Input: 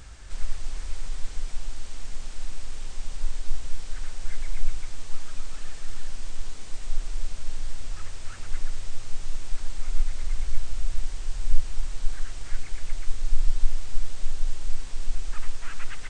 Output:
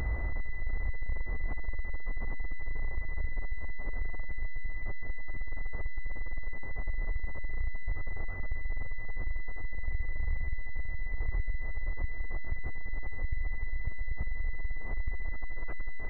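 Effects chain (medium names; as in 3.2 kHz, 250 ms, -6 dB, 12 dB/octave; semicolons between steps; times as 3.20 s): 11.94–14.21 s: chunks repeated in reverse 242 ms, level -9.5 dB; peaking EQ 160 Hz -2.5 dB 2.2 oct; compression 12:1, threshold -22 dBFS, peak gain reduction 16.5 dB; shuffle delay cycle 751 ms, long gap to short 1.5:1, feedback 62%, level -22.5 dB; hard clipper -27.5 dBFS, distortion -10 dB; peak limiter -39 dBFS, peak gain reduction 11.5 dB; peaking EQ 71 Hz +6 dB 1.8 oct; class-D stage that switches slowly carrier 2 kHz; trim +13.5 dB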